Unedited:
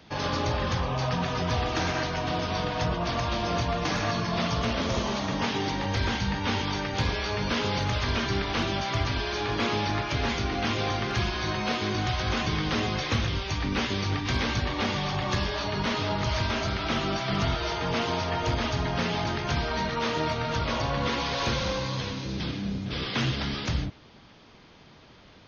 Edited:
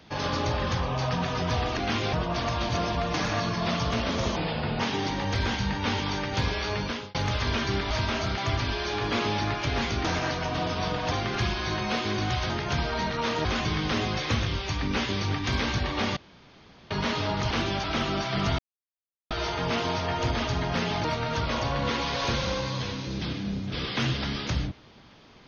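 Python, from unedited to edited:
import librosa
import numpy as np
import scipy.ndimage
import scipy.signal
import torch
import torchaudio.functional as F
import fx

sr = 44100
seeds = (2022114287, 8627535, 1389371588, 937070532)

y = fx.edit(x, sr, fx.swap(start_s=1.77, length_s=1.07, other_s=10.52, other_length_s=0.36),
    fx.reverse_span(start_s=3.4, length_s=0.26),
    fx.speed_span(start_s=5.07, length_s=0.34, speed=0.78),
    fx.fade_out_span(start_s=7.38, length_s=0.38),
    fx.swap(start_s=8.52, length_s=0.33, other_s=16.32, other_length_s=0.47),
    fx.room_tone_fill(start_s=14.98, length_s=0.74),
    fx.insert_silence(at_s=17.54, length_s=0.72),
    fx.move(start_s=19.28, length_s=0.95, to_s=12.26), tone=tone)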